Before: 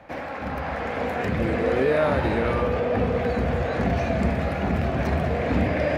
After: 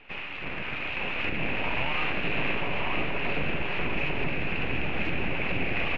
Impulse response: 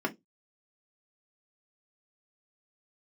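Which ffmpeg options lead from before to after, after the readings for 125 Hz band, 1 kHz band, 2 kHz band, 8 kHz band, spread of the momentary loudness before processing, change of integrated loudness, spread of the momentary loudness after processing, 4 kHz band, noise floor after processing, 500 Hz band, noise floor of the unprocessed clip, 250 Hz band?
-10.0 dB, -6.5 dB, +2.0 dB, n/a, 8 LU, -5.0 dB, 4 LU, +5.5 dB, -36 dBFS, -12.0 dB, -32 dBFS, -9.0 dB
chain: -af "equalizer=f=870:w=0.8:g=-9.5,alimiter=limit=-18dB:level=0:latency=1:release=186,aeval=exprs='abs(val(0))':c=same,lowpass=f=2.6k:t=q:w=6.8,aecho=1:1:987:0.501,volume=-2dB"

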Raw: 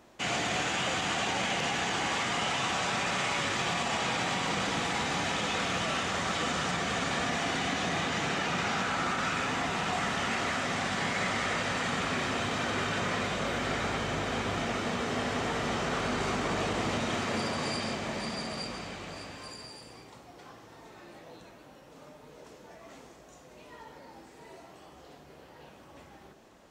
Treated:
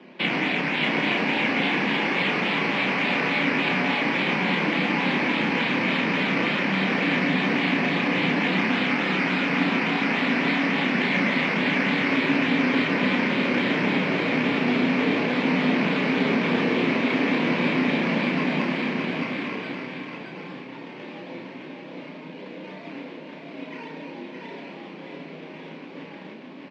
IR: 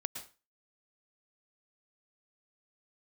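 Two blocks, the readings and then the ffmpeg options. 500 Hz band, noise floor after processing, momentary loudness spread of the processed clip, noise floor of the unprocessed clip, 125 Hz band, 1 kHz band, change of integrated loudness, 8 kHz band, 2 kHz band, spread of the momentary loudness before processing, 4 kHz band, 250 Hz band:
+7.0 dB, -40 dBFS, 17 LU, -53 dBFS, +6.5 dB, +3.0 dB, +8.0 dB, under -10 dB, +9.0 dB, 12 LU, +4.0 dB, +13.0 dB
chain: -filter_complex "[0:a]acompressor=threshold=-32dB:ratio=6,flanger=delay=5.6:depth=3.1:regen=-48:speed=0.45:shape=sinusoidal,afreqshift=16,acrusher=samples=10:mix=1:aa=0.000001:lfo=1:lforange=6:lforate=3.5,highpass=f=160:w=0.5412,highpass=f=160:w=1.3066,equalizer=f=180:t=q:w=4:g=5,equalizer=f=270:t=q:w=4:g=8,equalizer=f=730:t=q:w=4:g=-7,equalizer=f=1.3k:t=q:w=4:g=-8,equalizer=f=2.3k:t=q:w=4:g=7,lowpass=f=3.7k:w=0.5412,lowpass=f=3.7k:w=1.3066,asplit=2[a][b];[b]adelay=32,volume=-5dB[c];[a][c]amix=inputs=2:normalize=0,aecho=1:1:618:0.631,asplit=2[d][e];[1:a]atrim=start_sample=2205,highshelf=f=11k:g=11.5[f];[e][f]afir=irnorm=-1:irlink=0,volume=1dB[g];[d][g]amix=inputs=2:normalize=0,volume=7dB"

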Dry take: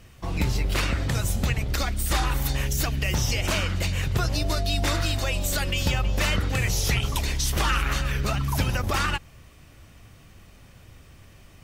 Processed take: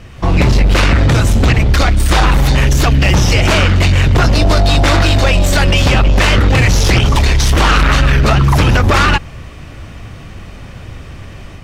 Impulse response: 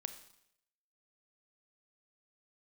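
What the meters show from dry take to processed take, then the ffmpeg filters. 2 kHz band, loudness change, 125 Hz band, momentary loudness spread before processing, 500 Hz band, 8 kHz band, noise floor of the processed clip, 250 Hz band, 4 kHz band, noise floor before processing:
+14.0 dB, +14.5 dB, +15.0 dB, 2 LU, +15.5 dB, +8.0 dB, -32 dBFS, +16.0 dB, +12.0 dB, -51 dBFS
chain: -af "aeval=exprs='0.237*sin(PI/2*2.51*val(0)/0.237)':c=same,dynaudnorm=f=110:g=3:m=4.5dB,aemphasis=mode=reproduction:type=50fm,volume=2.5dB"

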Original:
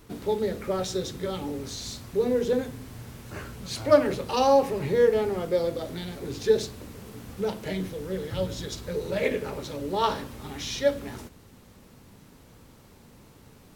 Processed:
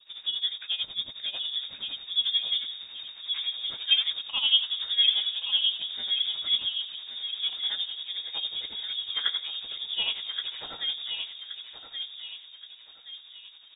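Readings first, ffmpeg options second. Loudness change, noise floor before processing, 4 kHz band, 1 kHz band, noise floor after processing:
0.0 dB, -53 dBFS, +15.5 dB, -19.0 dB, -51 dBFS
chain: -filter_complex "[0:a]adynamicequalizer=threshold=0.00631:dfrequency=1700:dqfactor=1.2:tfrequency=1700:tqfactor=1.2:attack=5:release=100:ratio=0.375:range=2.5:mode=cutabove:tftype=bell,tremolo=f=11:d=0.79,asplit=2[a][b];[b]adelay=1124,lowpass=f=2.1k:p=1,volume=-5dB,asplit=2[c][d];[d]adelay=1124,lowpass=f=2.1k:p=1,volume=0.44,asplit=2[e][f];[f]adelay=1124,lowpass=f=2.1k:p=1,volume=0.44,asplit=2[g][h];[h]adelay=1124,lowpass=f=2.1k:p=1,volume=0.44,asplit=2[i][j];[j]adelay=1124,lowpass=f=2.1k:p=1,volume=0.44[k];[c][e][g][i][k]amix=inputs=5:normalize=0[l];[a][l]amix=inputs=2:normalize=0,lowpass=f=3.2k:t=q:w=0.5098,lowpass=f=3.2k:t=q:w=0.6013,lowpass=f=3.2k:t=q:w=0.9,lowpass=f=3.2k:t=q:w=2.563,afreqshift=-3800"

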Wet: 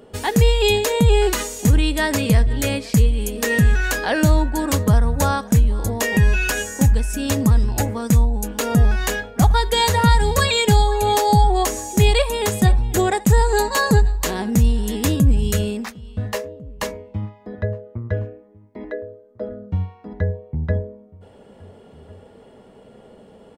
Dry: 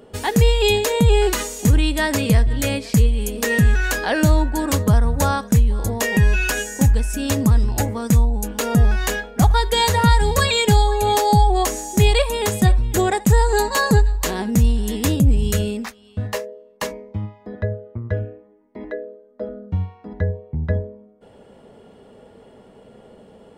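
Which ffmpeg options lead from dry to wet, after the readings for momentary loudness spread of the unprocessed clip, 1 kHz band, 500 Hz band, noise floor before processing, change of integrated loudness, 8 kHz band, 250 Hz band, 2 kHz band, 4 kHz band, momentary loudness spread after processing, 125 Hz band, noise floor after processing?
14 LU, 0.0 dB, 0.0 dB, -49 dBFS, 0.0 dB, 0.0 dB, 0.0 dB, 0.0 dB, 0.0 dB, 14 LU, 0.0 dB, -48 dBFS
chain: -filter_complex "[0:a]asplit=2[a][b];[b]adelay=1399,volume=-23dB,highshelf=f=4k:g=-31.5[c];[a][c]amix=inputs=2:normalize=0"

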